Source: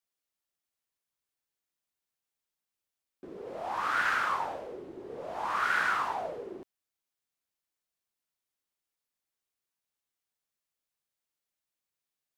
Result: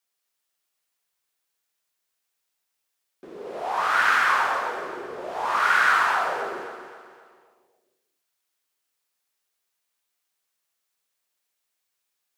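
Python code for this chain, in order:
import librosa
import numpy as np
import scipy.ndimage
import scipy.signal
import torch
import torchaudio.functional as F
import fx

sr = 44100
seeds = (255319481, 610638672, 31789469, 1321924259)

y = fx.low_shelf(x, sr, hz=310.0, db=-12.0)
y = fx.echo_feedback(y, sr, ms=263, feedback_pct=44, wet_db=-11.0)
y = fx.rev_gated(y, sr, seeds[0], gate_ms=300, shape='flat', drr_db=2.0)
y = y * librosa.db_to_amplitude(7.5)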